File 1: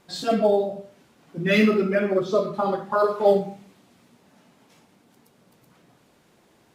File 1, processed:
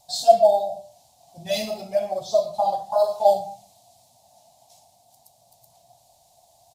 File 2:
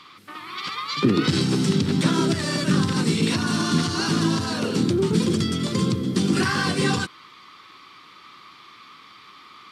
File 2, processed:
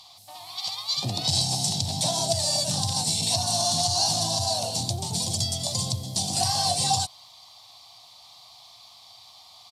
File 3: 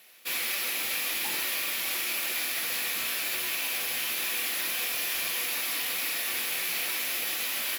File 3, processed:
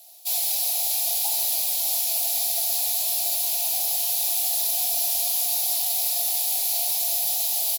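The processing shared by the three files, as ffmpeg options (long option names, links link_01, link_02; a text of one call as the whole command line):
ffmpeg -i in.wav -af "firequalizer=gain_entry='entry(110,0);entry(170,-14);entry(250,-19);entry(410,-24);entry(690,13);entry(1300,-24);entry(4000,5);entry(7200,9)':delay=0.05:min_phase=1" out.wav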